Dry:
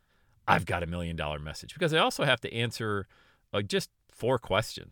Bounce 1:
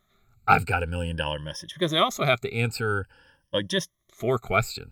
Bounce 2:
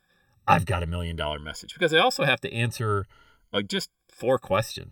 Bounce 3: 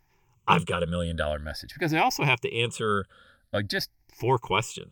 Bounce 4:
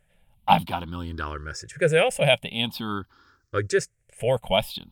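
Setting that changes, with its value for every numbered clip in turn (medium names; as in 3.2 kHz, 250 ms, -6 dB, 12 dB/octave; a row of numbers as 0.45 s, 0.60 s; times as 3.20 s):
drifting ripple filter, ripples per octave: 1.2, 1.8, 0.73, 0.5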